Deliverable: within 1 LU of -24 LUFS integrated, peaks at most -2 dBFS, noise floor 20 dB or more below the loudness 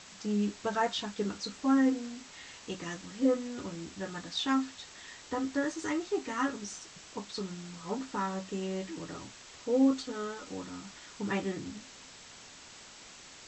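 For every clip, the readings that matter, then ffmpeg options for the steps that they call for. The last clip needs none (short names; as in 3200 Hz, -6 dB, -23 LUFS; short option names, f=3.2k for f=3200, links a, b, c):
noise floor -52 dBFS; noise floor target -54 dBFS; loudness -33.5 LUFS; peak -16.0 dBFS; loudness target -24.0 LUFS
-> -af "afftdn=nr=6:nf=-52"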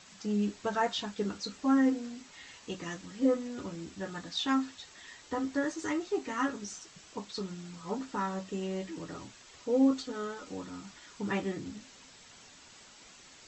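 noise floor -55 dBFS; loudness -33.5 LUFS; peak -16.0 dBFS; loudness target -24.0 LUFS
-> -af "volume=9.5dB"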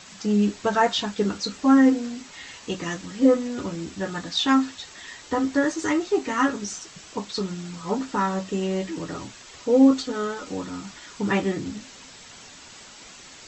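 loudness -24.0 LUFS; peak -6.5 dBFS; noise floor -46 dBFS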